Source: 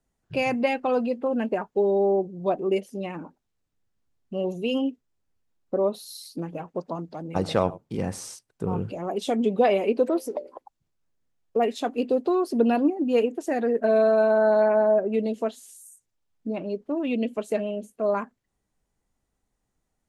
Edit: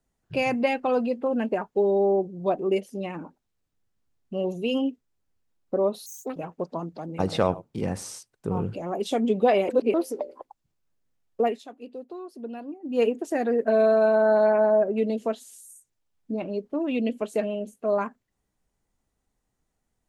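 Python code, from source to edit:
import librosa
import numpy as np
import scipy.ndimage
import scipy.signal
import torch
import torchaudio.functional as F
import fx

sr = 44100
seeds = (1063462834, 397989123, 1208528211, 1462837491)

y = fx.edit(x, sr, fx.speed_span(start_s=6.06, length_s=0.46, speed=1.54),
    fx.reverse_span(start_s=9.85, length_s=0.25),
    fx.fade_down_up(start_s=11.59, length_s=1.6, db=-15.5, fade_s=0.21), tone=tone)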